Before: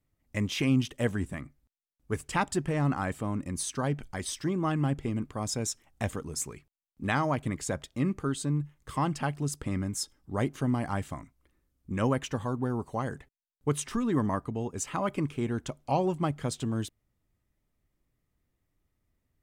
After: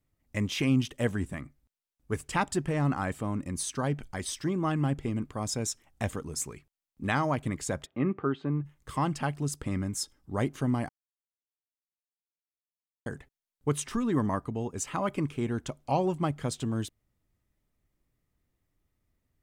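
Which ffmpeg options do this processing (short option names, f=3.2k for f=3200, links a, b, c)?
-filter_complex "[0:a]asplit=3[a][b][c];[a]afade=t=out:st=7.85:d=0.02[d];[b]highpass=130,equalizer=f=390:t=q:w=4:g=5,equalizer=f=740:t=q:w=4:g=5,equalizer=f=1.2k:t=q:w=4:g=4,lowpass=f=2.8k:w=0.5412,lowpass=f=2.8k:w=1.3066,afade=t=in:st=7.85:d=0.02,afade=t=out:st=8.64:d=0.02[e];[c]afade=t=in:st=8.64:d=0.02[f];[d][e][f]amix=inputs=3:normalize=0,asplit=3[g][h][i];[g]atrim=end=10.89,asetpts=PTS-STARTPTS,afade=t=out:st=10.886:d=0.004:c=hsin[j];[h]atrim=start=10.89:end=13.06,asetpts=PTS-STARTPTS,volume=0[k];[i]atrim=start=13.06,asetpts=PTS-STARTPTS,afade=t=in:d=0.004:c=hsin[l];[j][k][l]concat=n=3:v=0:a=1"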